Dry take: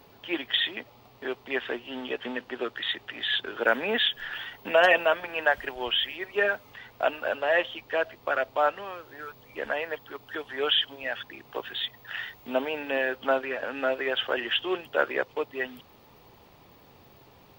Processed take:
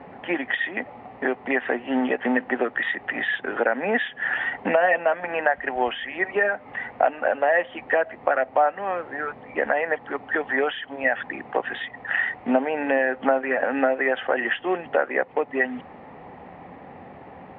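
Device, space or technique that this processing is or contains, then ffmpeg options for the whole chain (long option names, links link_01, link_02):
bass amplifier: -af "acompressor=threshold=-32dB:ratio=5,highpass=60,equalizer=frequency=120:width_type=q:width=4:gain=-5,equalizer=frequency=180:width_type=q:width=4:gain=7,equalizer=frequency=260:width_type=q:width=4:gain=7,equalizer=frequency=530:width_type=q:width=4:gain=5,equalizer=frequency=760:width_type=q:width=4:gain=10,equalizer=frequency=1900:width_type=q:width=4:gain=8,lowpass=frequency=2300:width=0.5412,lowpass=frequency=2300:width=1.3066,volume=8.5dB"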